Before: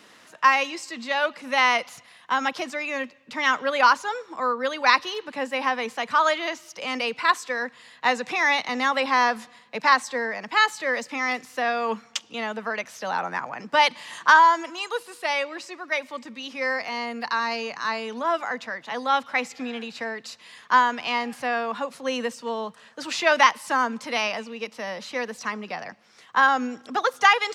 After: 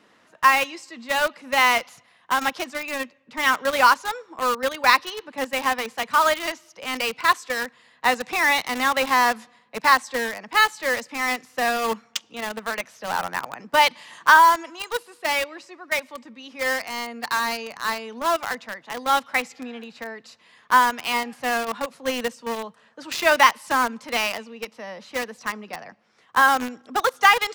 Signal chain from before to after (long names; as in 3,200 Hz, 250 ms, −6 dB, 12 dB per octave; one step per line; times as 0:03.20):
in parallel at −3 dB: bit reduction 4 bits
on the sum: one half of a high-frequency compander decoder only
level −3 dB